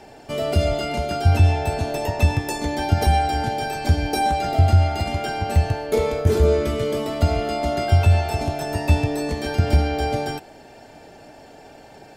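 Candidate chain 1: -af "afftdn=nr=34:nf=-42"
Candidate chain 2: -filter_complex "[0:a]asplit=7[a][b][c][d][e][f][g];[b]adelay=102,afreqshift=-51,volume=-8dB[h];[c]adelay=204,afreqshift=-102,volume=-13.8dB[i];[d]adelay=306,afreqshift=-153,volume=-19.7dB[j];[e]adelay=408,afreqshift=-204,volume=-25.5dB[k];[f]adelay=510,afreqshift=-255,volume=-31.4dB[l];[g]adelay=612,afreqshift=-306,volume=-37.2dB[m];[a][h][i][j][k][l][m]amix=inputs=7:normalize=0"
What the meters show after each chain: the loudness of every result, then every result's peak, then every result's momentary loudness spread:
-21.5, -20.5 LUFS; -5.0, -3.5 dBFS; 8, 8 LU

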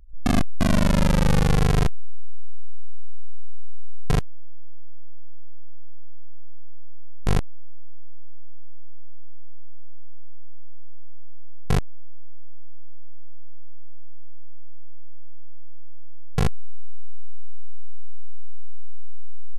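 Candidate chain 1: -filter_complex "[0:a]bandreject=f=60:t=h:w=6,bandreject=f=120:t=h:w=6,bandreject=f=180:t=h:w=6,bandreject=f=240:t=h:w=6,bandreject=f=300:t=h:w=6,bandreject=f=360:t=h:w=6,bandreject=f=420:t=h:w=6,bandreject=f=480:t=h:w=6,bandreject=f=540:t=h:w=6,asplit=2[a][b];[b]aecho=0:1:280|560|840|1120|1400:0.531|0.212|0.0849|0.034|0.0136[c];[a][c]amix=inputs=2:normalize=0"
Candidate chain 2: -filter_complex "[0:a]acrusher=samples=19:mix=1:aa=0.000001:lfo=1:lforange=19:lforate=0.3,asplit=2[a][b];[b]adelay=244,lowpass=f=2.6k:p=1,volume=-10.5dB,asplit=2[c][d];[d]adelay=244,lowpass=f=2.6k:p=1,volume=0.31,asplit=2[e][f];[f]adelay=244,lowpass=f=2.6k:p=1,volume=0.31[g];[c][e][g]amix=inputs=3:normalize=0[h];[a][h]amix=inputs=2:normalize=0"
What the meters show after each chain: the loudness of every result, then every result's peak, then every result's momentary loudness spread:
-24.5, -23.5 LUFS; -7.5, -11.0 dBFS; 21, 18 LU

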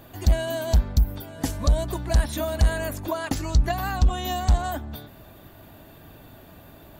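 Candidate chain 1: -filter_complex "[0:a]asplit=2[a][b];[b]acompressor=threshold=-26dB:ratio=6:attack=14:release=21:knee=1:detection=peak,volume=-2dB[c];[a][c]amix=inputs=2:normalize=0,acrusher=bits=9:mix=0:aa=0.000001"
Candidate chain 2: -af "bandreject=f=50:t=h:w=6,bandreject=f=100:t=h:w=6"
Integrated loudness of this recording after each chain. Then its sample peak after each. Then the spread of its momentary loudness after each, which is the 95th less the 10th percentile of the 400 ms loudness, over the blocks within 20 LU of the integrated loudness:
-22.0, -26.0 LUFS; -7.0, -10.5 dBFS; 6, 7 LU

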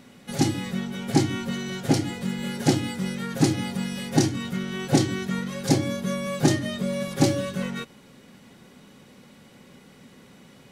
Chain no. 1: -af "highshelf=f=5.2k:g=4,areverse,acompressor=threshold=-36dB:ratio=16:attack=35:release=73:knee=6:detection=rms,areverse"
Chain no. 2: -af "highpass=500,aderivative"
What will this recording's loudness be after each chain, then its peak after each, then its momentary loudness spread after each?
-37.5, -37.0 LUFS; -23.5, -13.0 dBFS; 13, 10 LU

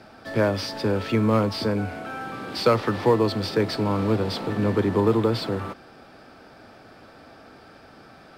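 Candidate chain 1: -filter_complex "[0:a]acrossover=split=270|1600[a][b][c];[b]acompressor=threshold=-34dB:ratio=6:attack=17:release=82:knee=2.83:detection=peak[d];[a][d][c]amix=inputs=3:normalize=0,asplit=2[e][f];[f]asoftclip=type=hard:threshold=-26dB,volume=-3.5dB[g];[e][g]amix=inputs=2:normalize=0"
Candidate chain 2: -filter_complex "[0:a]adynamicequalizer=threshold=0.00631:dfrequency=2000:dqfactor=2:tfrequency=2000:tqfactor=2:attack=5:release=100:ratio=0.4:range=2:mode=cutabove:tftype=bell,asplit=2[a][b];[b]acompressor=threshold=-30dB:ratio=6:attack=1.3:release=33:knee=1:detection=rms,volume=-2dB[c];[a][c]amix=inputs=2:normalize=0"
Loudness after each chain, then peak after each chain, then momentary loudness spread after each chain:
-24.0, -22.5 LUFS; -11.5, -5.5 dBFS; 21, 9 LU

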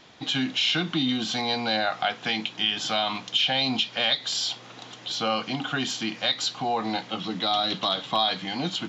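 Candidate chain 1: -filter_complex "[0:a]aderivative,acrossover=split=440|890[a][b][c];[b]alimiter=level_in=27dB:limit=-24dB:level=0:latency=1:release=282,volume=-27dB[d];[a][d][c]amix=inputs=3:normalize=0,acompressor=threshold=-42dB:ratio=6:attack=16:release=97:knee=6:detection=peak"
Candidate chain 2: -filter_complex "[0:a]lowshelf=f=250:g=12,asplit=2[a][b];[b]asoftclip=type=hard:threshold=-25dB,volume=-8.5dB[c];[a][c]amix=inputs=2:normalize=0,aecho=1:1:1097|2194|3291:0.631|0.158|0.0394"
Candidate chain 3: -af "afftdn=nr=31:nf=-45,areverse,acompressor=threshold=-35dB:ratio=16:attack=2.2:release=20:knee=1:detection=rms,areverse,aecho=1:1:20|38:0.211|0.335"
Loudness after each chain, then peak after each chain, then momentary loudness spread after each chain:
-41.5, -21.0, -37.0 LUFS; -21.0, -7.5, -25.5 dBFS; 4, 3, 3 LU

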